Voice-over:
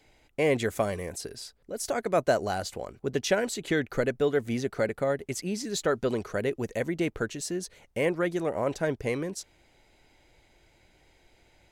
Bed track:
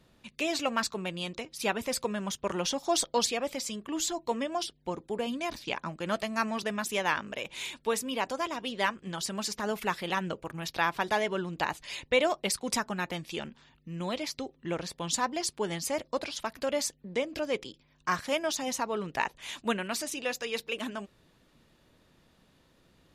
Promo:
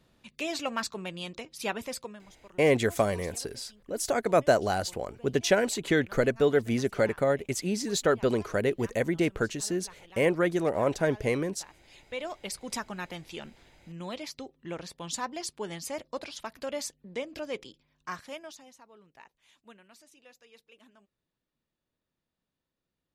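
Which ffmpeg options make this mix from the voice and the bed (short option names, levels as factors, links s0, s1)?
-filter_complex "[0:a]adelay=2200,volume=1.26[s0];[1:a]volume=5.31,afade=t=out:st=1.78:d=0.47:silence=0.112202,afade=t=in:st=11.82:d=0.97:silence=0.141254,afade=t=out:st=17.7:d=1.02:silence=0.112202[s1];[s0][s1]amix=inputs=2:normalize=0"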